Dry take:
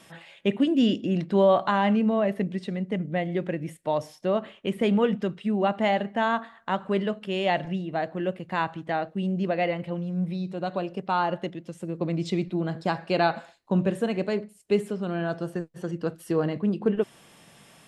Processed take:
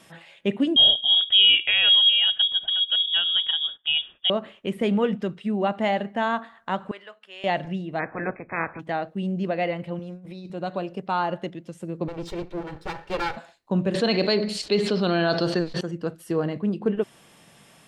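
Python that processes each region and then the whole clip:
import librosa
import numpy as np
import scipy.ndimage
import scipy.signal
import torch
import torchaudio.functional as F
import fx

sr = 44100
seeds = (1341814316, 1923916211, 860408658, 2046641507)

y = fx.chain(x, sr, fx.low_shelf(hz=220.0, db=11.0),
    fx.freq_invert(carrier_hz=3500), at=(0.76, 4.3))
y = fx.chain(y, sr, fx.highpass(hz=1300.0, slope=12),
    fx.high_shelf(hz=2100.0, db=-10.5), at=(6.91, 7.44))
y = fx.spec_clip(y, sr, under_db=20, at=(7.98, 8.79), fade=0.02)
y = fx.brickwall_lowpass(y, sr, high_hz=2600.0, at=(7.98, 8.79), fade=0.02)
y = fx.chain(y, sr, fx.peak_eq(hz=150.0, db=-15.0, octaves=0.55),
    fx.over_compress(threshold_db=-37.0, ratio=-0.5), at=(9.99, 10.5))
y = fx.chain(y, sr, fx.lower_of_two(delay_ms=2.2),
    fx.high_shelf(hz=6300.0, db=-8.0), at=(12.08, 13.37))
y = fx.chain(y, sr, fx.lowpass_res(hz=4300.0, q=6.6),
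    fx.peak_eq(hz=100.0, db=-9.5, octaves=1.5),
    fx.env_flatten(amount_pct=70), at=(13.94, 15.81))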